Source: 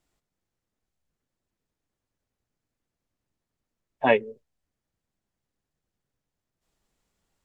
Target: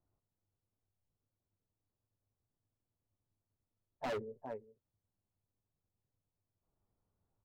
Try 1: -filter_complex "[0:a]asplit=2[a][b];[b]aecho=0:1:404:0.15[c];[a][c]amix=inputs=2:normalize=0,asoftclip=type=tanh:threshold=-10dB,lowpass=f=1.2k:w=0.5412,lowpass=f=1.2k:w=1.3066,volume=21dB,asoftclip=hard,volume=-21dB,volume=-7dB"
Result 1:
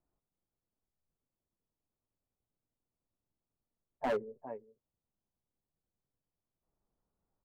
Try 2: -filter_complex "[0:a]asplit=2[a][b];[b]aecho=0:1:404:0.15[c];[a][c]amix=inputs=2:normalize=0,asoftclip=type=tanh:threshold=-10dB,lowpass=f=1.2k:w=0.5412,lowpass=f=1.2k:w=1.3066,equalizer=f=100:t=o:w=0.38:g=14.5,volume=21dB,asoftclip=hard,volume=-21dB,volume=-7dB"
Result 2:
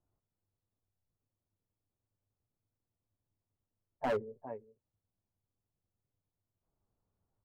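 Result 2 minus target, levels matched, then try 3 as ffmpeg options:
overloaded stage: distortion -5 dB
-filter_complex "[0:a]asplit=2[a][b];[b]aecho=0:1:404:0.15[c];[a][c]amix=inputs=2:normalize=0,asoftclip=type=tanh:threshold=-10dB,lowpass=f=1.2k:w=0.5412,lowpass=f=1.2k:w=1.3066,equalizer=f=100:t=o:w=0.38:g=14.5,volume=28.5dB,asoftclip=hard,volume=-28.5dB,volume=-7dB"

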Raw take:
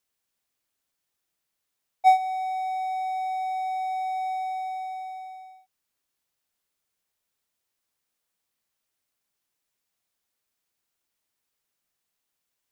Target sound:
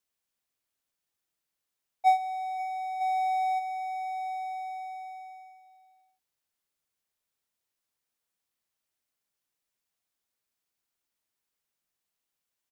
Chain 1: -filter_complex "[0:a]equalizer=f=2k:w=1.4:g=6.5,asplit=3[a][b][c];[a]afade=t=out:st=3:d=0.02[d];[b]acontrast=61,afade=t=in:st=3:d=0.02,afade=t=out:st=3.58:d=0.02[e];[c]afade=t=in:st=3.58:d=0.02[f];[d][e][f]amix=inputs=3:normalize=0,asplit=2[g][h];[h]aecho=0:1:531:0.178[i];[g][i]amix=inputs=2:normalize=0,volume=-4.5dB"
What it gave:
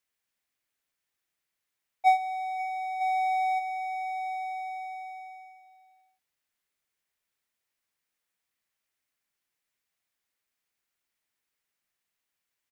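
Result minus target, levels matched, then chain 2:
2000 Hz band +5.0 dB
-filter_complex "[0:a]asplit=3[a][b][c];[a]afade=t=out:st=3:d=0.02[d];[b]acontrast=61,afade=t=in:st=3:d=0.02,afade=t=out:st=3.58:d=0.02[e];[c]afade=t=in:st=3.58:d=0.02[f];[d][e][f]amix=inputs=3:normalize=0,asplit=2[g][h];[h]aecho=0:1:531:0.178[i];[g][i]amix=inputs=2:normalize=0,volume=-4.5dB"

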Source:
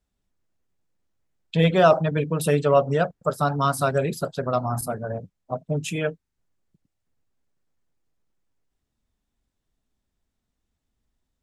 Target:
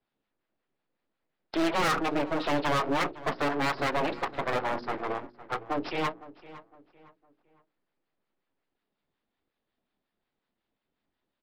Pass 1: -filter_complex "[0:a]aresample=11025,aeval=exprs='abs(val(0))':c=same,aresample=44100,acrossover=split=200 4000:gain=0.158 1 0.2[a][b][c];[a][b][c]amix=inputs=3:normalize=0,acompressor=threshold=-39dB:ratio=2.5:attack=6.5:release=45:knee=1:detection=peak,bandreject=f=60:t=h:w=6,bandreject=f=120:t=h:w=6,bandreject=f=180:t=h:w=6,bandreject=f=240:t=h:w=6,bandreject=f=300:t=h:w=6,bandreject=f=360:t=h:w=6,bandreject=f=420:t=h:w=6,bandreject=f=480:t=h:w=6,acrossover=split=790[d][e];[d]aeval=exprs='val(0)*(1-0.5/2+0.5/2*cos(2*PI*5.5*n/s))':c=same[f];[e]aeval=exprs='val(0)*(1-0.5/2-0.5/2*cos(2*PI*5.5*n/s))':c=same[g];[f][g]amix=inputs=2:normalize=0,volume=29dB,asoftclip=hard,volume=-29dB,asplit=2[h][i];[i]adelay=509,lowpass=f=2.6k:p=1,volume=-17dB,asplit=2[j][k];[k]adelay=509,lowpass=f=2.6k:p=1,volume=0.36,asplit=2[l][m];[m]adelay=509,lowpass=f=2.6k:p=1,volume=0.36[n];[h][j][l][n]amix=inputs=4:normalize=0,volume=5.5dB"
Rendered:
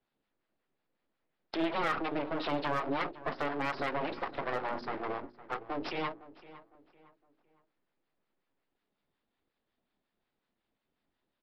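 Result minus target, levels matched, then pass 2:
compressor: peak gain reduction +14.5 dB
-filter_complex "[0:a]aresample=11025,aeval=exprs='abs(val(0))':c=same,aresample=44100,acrossover=split=200 4000:gain=0.158 1 0.2[a][b][c];[a][b][c]amix=inputs=3:normalize=0,bandreject=f=60:t=h:w=6,bandreject=f=120:t=h:w=6,bandreject=f=180:t=h:w=6,bandreject=f=240:t=h:w=6,bandreject=f=300:t=h:w=6,bandreject=f=360:t=h:w=6,bandreject=f=420:t=h:w=6,bandreject=f=480:t=h:w=6,acrossover=split=790[d][e];[d]aeval=exprs='val(0)*(1-0.5/2+0.5/2*cos(2*PI*5.5*n/s))':c=same[f];[e]aeval=exprs='val(0)*(1-0.5/2-0.5/2*cos(2*PI*5.5*n/s))':c=same[g];[f][g]amix=inputs=2:normalize=0,volume=29dB,asoftclip=hard,volume=-29dB,asplit=2[h][i];[i]adelay=509,lowpass=f=2.6k:p=1,volume=-17dB,asplit=2[j][k];[k]adelay=509,lowpass=f=2.6k:p=1,volume=0.36,asplit=2[l][m];[m]adelay=509,lowpass=f=2.6k:p=1,volume=0.36[n];[h][j][l][n]amix=inputs=4:normalize=0,volume=5.5dB"

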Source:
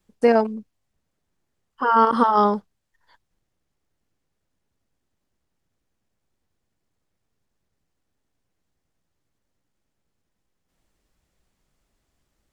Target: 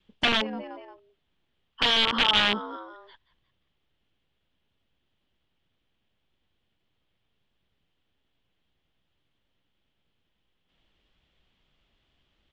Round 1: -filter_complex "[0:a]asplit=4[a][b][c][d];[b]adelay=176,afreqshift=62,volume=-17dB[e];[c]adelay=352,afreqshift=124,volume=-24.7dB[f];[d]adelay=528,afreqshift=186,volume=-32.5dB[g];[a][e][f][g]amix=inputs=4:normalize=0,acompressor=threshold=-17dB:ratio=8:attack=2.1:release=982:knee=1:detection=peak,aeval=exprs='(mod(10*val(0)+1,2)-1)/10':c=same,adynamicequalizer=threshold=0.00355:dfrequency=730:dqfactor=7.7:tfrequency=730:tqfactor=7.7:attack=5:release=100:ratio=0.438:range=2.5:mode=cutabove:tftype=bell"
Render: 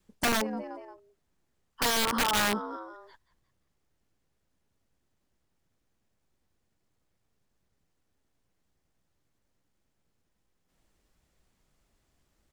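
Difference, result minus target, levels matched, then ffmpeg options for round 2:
4000 Hz band -5.0 dB
-filter_complex "[0:a]asplit=4[a][b][c][d];[b]adelay=176,afreqshift=62,volume=-17dB[e];[c]adelay=352,afreqshift=124,volume=-24.7dB[f];[d]adelay=528,afreqshift=186,volume=-32.5dB[g];[a][e][f][g]amix=inputs=4:normalize=0,acompressor=threshold=-17dB:ratio=8:attack=2.1:release=982:knee=1:detection=peak,aeval=exprs='(mod(10*val(0)+1,2)-1)/10':c=same,adynamicequalizer=threshold=0.00355:dfrequency=730:dqfactor=7.7:tfrequency=730:tqfactor=7.7:attack=5:release=100:ratio=0.438:range=2.5:mode=cutabove:tftype=bell,lowpass=f=3.2k:t=q:w=4.6"

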